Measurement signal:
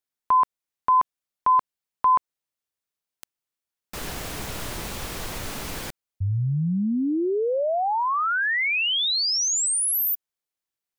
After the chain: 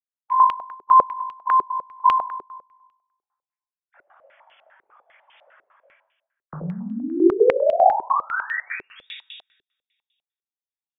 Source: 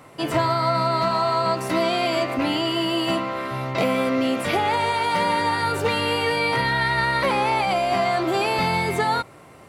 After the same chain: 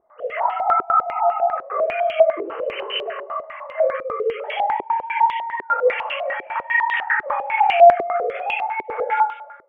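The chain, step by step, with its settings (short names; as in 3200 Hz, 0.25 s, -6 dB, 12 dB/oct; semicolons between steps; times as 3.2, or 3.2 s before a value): sine-wave speech; on a send: thinning echo 98 ms, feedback 63%, high-pass 640 Hz, level -12.5 dB; on the sum: plate-style reverb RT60 0.62 s, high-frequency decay 0.9×, DRR -1.5 dB; stepped low-pass 10 Hz 390–2900 Hz; gain -8 dB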